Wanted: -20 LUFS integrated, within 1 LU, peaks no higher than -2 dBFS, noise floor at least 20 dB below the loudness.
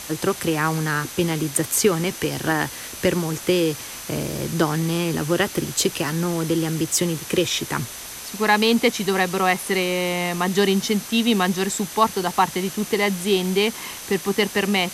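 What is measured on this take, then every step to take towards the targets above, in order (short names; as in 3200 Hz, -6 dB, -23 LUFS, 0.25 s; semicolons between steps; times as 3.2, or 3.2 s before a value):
steady tone 6100 Hz; tone level -43 dBFS; noise floor -36 dBFS; noise floor target -42 dBFS; loudness -22.0 LUFS; peak -4.5 dBFS; loudness target -20.0 LUFS
-> notch 6100 Hz, Q 30; noise print and reduce 6 dB; gain +2 dB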